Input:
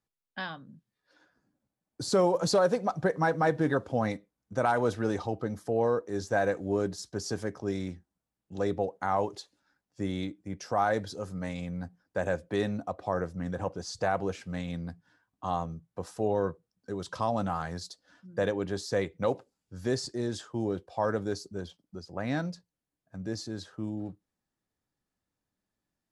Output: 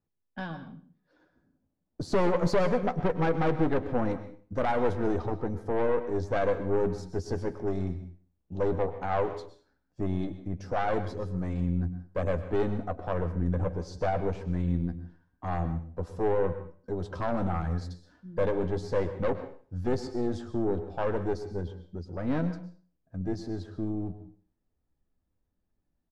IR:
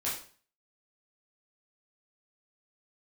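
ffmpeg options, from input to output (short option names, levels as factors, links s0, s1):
-filter_complex "[0:a]tiltshelf=f=740:g=7,asplit=2[s0][s1];[s1]adynamicsmooth=sensitivity=3:basefreq=5800,volume=1.12[s2];[s0][s2]amix=inputs=2:normalize=0,asubboost=boost=4.5:cutoff=57,aeval=exprs='(tanh(7.94*val(0)+0.6)-tanh(0.6))/7.94':c=same,asplit=2[s3][s4];[s4]adelay=12,volume=0.299[s5];[s3][s5]amix=inputs=2:normalize=0,asplit=2[s6][s7];[1:a]atrim=start_sample=2205,adelay=103[s8];[s7][s8]afir=irnorm=-1:irlink=0,volume=0.158[s9];[s6][s9]amix=inputs=2:normalize=0,volume=0.668"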